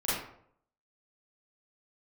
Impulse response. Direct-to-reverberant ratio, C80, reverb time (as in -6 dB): -11.0 dB, 4.0 dB, 0.65 s